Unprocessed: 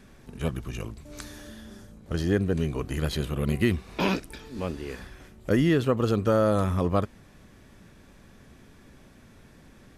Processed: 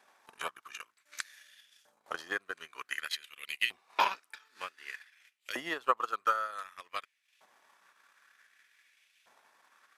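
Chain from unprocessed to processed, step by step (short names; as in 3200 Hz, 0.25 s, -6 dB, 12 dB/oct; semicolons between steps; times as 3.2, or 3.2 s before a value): LFO high-pass saw up 0.54 Hz 780–2800 Hz; transient shaper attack +11 dB, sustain -11 dB; gain -8.5 dB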